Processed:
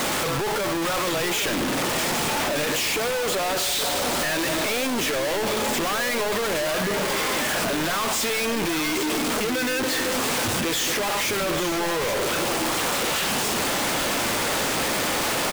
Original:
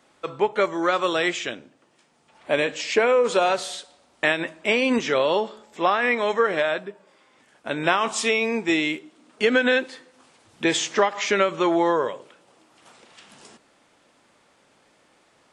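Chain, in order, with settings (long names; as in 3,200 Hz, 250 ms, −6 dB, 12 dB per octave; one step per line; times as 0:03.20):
sign of each sample alone
single-tap delay 822 ms −9 dB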